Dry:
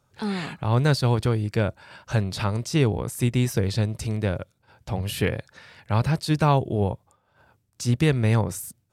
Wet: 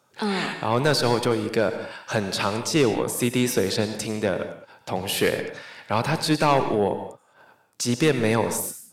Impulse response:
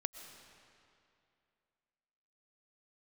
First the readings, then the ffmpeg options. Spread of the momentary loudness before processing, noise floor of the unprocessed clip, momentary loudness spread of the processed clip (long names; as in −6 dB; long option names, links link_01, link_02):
9 LU, −69 dBFS, 10 LU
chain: -filter_complex "[0:a]highpass=260,aeval=exprs='0.422*(cos(1*acos(clip(val(0)/0.422,-1,1)))-cos(1*PI/2))+0.075*(cos(5*acos(clip(val(0)/0.422,-1,1)))-cos(5*PI/2))':channel_layout=same[link_01];[1:a]atrim=start_sample=2205,afade=type=out:start_time=0.36:duration=0.01,atrim=end_sample=16317,asetrate=61740,aresample=44100[link_02];[link_01][link_02]afir=irnorm=-1:irlink=0,volume=5dB"